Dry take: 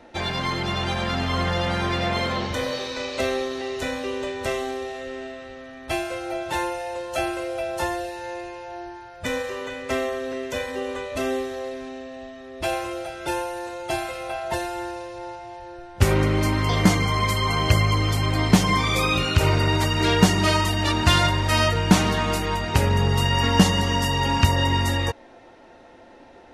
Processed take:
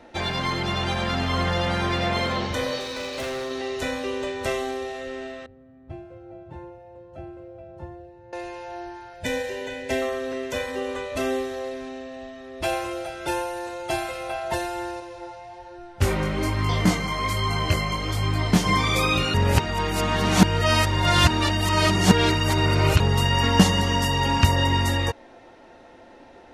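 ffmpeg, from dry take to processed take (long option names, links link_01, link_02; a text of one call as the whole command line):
ffmpeg -i in.wav -filter_complex "[0:a]asettb=1/sr,asplit=3[link_01][link_02][link_03];[link_01]atrim=end=2.804[link_04];[link_02]atrim=start=2.8:end=3.51,asetpts=PTS-STARTPTS,afade=type=in:duration=0.004:curve=qsin,afade=type=out:start_time=0.706:duration=0.004:curve=qsin,volume=27.5dB,asoftclip=hard,volume=-27.5dB[link_05];[link_03]atrim=start=3.506[link_06];[link_04][link_05]acrossfade=duration=0.004:curve1=hsin:curve2=qsin[link_07];[link_07][link_06]acrossfade=duration=0.004:curve1=qsin:curve2=hsin,asettb=1/sr,asplit=3[link_08][link_09][link_10];[link_08]atrim=end=5.464[link_11];[link_09]atrim=start=5.46:end=8.33,asetpts=PTS-STARTPTS,afade=type=in:duration=0.004:curve=qsin,afade=type=out:start_time=2.866:duration=0.004:curve=qsin,bandpass=frequency=120:width_type=q:width=1.2[link_12];[link_10]atrim=start=8.326[link_13];[link_11][link_12]acrossfade=duration=0.004:curve1=hsin:curve2=qsin[link_14];[link_14][link_13]acrossfade=duration=0.004:curve1=qsin:curve2=hsin,asettb=1/sr,asplit=3[link_15][link_16][link_17];[link_15]atrim=end=9.134[link_18];[link_16]atrim=start=9.13:end=10.02,asetpts=PTS-STARTPTS,afade=type=in:duration=0.004:curve=qsin,afade=type=out:start_time=0.886:duration=0.004:curve=qsin,asuperstop=centerf=1200:order=4:qfactor=2.5[link_19];[link_17]atrim=start=10.016[link_20];[link_18][link_19]acrossfade=duration=0.004:curve1=hsin:curve2=qsin[link_21];[link_21][link_20]acrossfade=duration=0.004:curve1=qsin:curve2=hsin,asettb=1/sr,asplit=3[link_22][link_23][link_24];[link_22]atrim=end=15.004[link_25];[link_23]atrim=start=15:end=18.66,asetpts=PTS-STARTPTS,afade=type=in:duration=0.004:curve=qsin,afade=type=out:start_time=3.656:duration=0.004:curve=qsin,flanger=delay=20:depth=4.7:speed=1.2[link_26];[link_24]atrim=start=18.656[link_27];[link_25][link_26]acrossfade=duration=0.004:curve1=hsin:curve2=qsin[link_28];[link_28][link_27]acrossfade=duration=0.004:curve1=qsin:curve2=hsin,asplit=3[link_29][link_30][link_31];[link_29]atrim=end=19.342[link_32];[link_30]atrim=start=19.338:end=23.002,asetpts=PTS-STARTPTS,areverse[link_33];[link_31]atrim=start=22.998[link_34];[link_32][link_33]acrossfade=duration=0.004:curve1=hsin:curve2=hsin[link_35];[link_35][link_34]acrossfade=duration=0.004:curve1=hsin:curve2=hsin" out.wav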